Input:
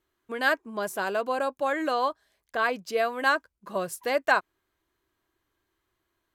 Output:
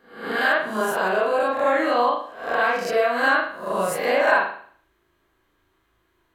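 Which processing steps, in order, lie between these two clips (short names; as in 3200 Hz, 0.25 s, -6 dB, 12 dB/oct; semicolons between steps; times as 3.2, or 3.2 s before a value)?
spectral swells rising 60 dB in 0.54 s; compressor 2:1, threshold -30 dBFS, peak gain reduction 9 dB; reverb RT60 0.55 s, pre-delay 37 ms, DRR -5 dB; gain +3 dB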